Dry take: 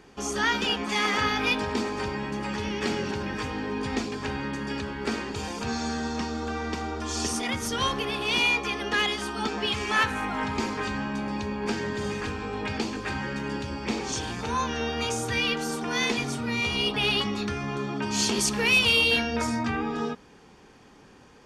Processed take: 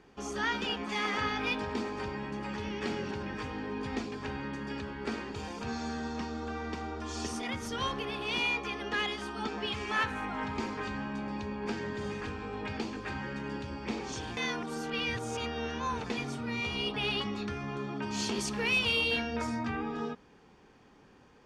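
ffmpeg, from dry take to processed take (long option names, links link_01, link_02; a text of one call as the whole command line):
ffmpeg -i in.wav -filter_complex "[0:a]asplit=3[link_01][link_02][link_03];[link_01]atrim=end=14.372[link_04];[link_02]atrim=start=14.368:end=16.102,asetpts=PTS-STARTPTS,areverse[link_05];[link_03]atrim=start=16.098[link_06];[link_04][link_05]acrossfade=duration=0.004:curve1=hsin:curve2=hsin[link_07];[link_07][link_06]acrossfade=duration=0.004:curve1=hsin:curve2=hsin,highshelf=frequency=6200:gain=-10.5,volume=-6dB" out.wav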